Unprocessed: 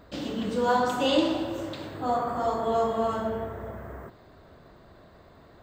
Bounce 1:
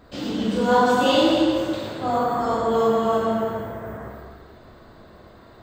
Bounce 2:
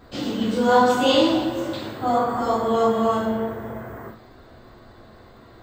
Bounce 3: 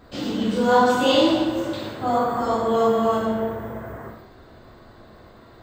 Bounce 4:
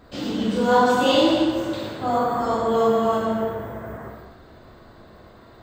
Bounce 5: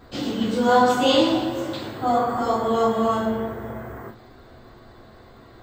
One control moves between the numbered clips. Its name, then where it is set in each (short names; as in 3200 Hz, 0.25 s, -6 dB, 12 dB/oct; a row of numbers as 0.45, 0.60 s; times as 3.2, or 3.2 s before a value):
non-linear reverb, gate: 510, 120, 220, 340, 80 ms